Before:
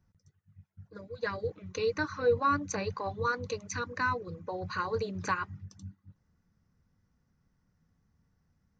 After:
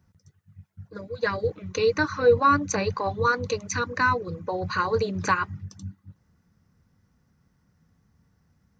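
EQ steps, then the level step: high-pass 51 Hz; +8.0 dB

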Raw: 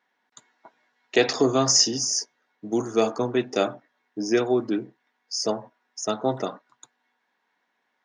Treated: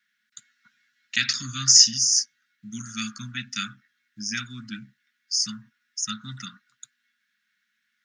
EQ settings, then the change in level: Chebyshev band-stop 220–1400 Hz, order 4; tone controls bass -11 dB, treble +5 dB; bass shelf 140 Hz +12 dB; +1.5 dB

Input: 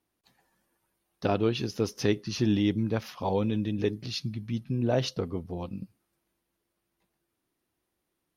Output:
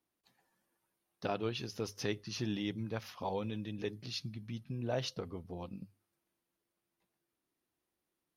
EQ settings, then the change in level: dynamic bell 280 Hz, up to -6 dB, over -36 dBFS, Q 0.79; bass shelf 110 Hz -4.5 dB; hum notches 50/100 Hz; -6.0 dB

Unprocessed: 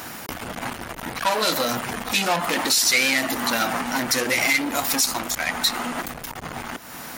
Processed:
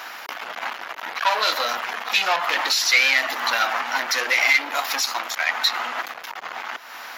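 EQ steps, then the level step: boxcar filter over 5 samples; high-pass 860 Hz 12 dB/octave; +4.5 dB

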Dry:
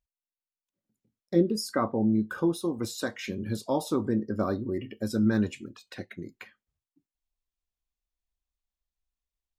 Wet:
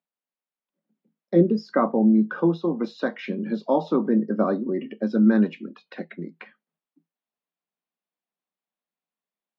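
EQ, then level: boxcar filter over 5 samples; rippled Chebyshev high-pass 160 Hz, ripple 3 dB; distance through air 200 m; +8.0 dB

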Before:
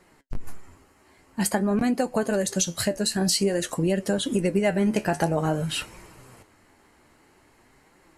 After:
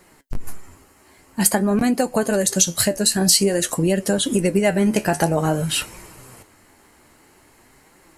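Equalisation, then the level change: treble shelf 7.6 kHz +10.5 dB; +4.5 dB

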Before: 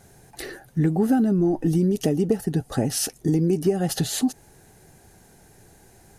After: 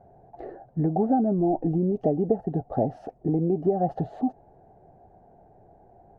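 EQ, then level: resonant low-pass 700 Hz, resonance Q 4.9; -5.0 dB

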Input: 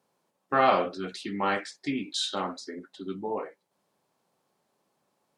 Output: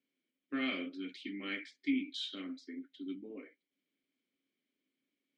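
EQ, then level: vowel filter i; peaking EQ 190 Hz -7 dB 1.9 oct; +5.5 dB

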